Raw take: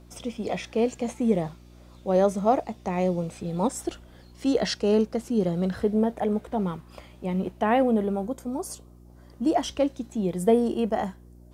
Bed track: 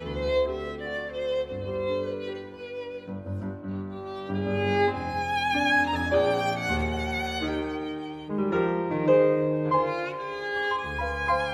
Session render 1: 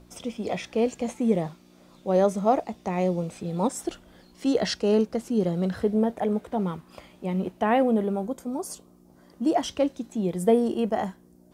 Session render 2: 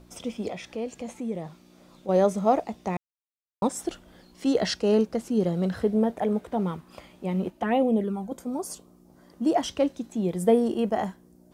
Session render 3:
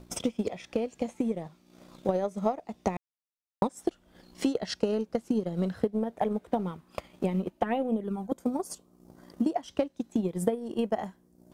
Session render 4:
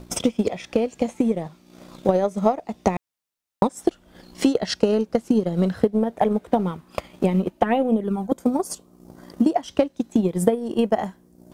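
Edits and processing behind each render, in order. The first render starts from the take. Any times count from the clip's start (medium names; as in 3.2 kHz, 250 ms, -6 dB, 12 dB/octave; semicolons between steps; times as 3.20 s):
de-hum 60 Hz, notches 2
0.48–2.09 s: compression 1.5:1, threshold -43 dBFS; 2.97–3.62 s: mute; 7.50–8.32 s: touch-sensitive flanger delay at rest 3.5 ms, full sweep at -17.5 dBFS
transient shaper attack +11 dB, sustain -8 dB; compression 10:1, threshold -24 dBFS, peak gain reduction 18 dB
trim +8.5 dB; peak limiter -3 dBFS, peak gain reduction 1 dB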